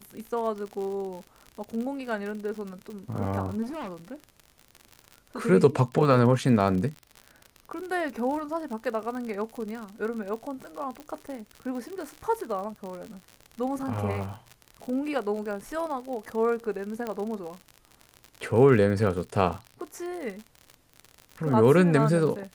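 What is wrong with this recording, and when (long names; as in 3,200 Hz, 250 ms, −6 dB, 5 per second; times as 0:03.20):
surface crackle 63 per second −33 dBFS
0:03.62–0:04.14: clipping −32.5 dBFS
0:11.00: click −27 dBFS
0:17.07: click −19 dBFS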